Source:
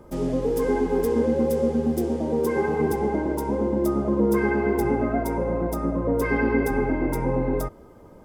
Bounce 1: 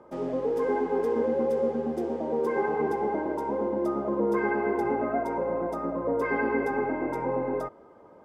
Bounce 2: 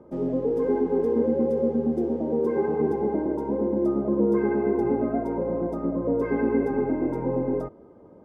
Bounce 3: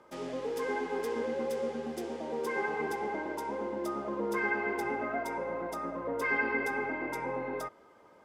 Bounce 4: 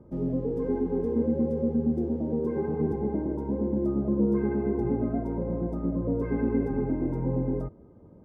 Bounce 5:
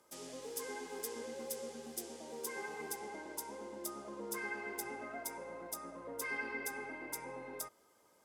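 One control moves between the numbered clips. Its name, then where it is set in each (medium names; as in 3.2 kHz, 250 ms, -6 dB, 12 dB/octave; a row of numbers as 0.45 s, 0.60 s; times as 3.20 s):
band-pass filter, frequency: 890 Hz, 350 Hz, 2.3 kHz, 140 Hz, 8 kHz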